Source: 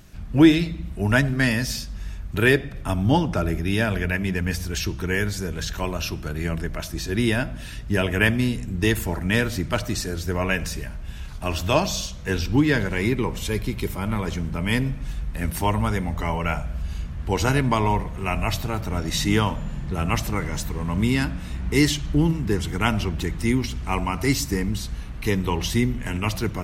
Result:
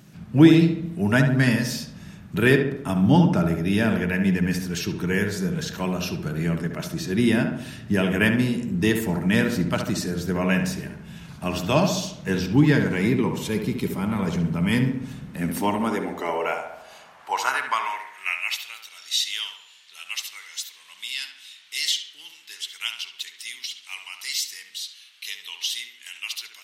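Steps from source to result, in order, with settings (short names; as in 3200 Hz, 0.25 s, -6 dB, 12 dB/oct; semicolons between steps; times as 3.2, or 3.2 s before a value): darkening echo 70 ms, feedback 55%, low-pass 2100 Hz, level -5.5 dB; high-pass sweep 160 Hz -> 3400 Hz, 15.19–18.92; gain -2 dB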